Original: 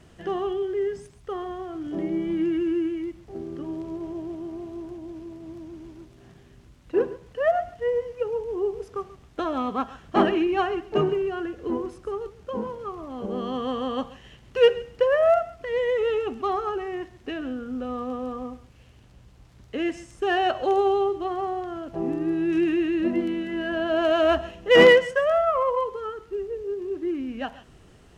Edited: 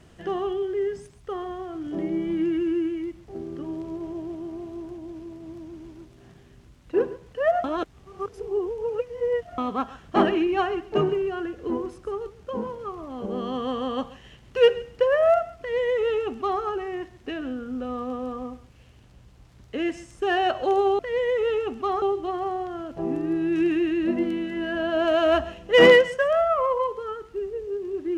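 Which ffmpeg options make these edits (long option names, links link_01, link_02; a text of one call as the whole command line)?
ffmpeg -i in.wav -filter_complex "[0:a]asplit=5[link_01][link_02][link_03][link_04][link_05];[link_01]atrim=end=7.642[link_06];[link_02]atrim=start=7.638:end=9.582,asetpts=PTS-STARTPTS,areverse[link_07];[link_03]atrim=start=9.578:end=20.992[link_08];[link_04]atrim=start=15.588:end=16.622[link_09];[link_05]atrim=start=20.988[link_10];[link_06][link_07]acrossfade=duration=0.004:curve1=hsin:curve2=hsin[link_11];[link_11][link_08]acrossfade=duration=0.004:curve1=hsin:curve2=hsin[link_12];[link_12][link_09]acrossfade=duration=0.004:curve1=hsin:curve2=hsin[link_13];[link_13][link_10]acrossfade=duration=0.004:curve1=hsin:curve2=hsin" out.wav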